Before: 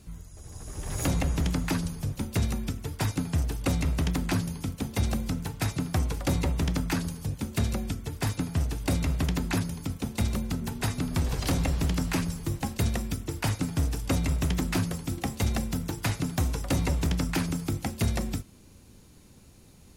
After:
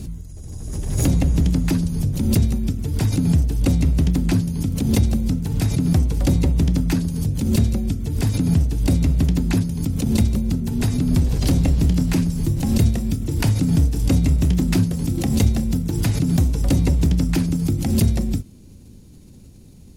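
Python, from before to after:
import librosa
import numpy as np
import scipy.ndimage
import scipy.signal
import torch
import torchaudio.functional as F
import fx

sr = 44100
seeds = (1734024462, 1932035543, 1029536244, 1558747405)

y = fx.doubler(x, sr, ms=28.0, db=-13, at=(11.53, 15.66))
y = fx.curve_eq(y, sr, hz=(250.0, 1200.0, 4600.0), db=(0, -15, -8))
y = fx.pre_swell(y, sr, db_per_s=44.0)
y = y * 10.0 ** (9.0 / 20.0)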